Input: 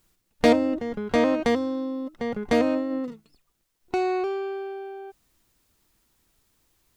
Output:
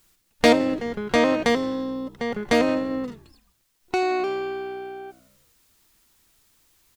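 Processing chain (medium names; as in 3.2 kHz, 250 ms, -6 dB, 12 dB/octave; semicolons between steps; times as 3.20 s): tilt shelf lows -3.5 dB; on a send: frequency-shifting echo 85 ms, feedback 61%, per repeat -62 Hz, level -20 dB; on the sum: trim +3.5 dB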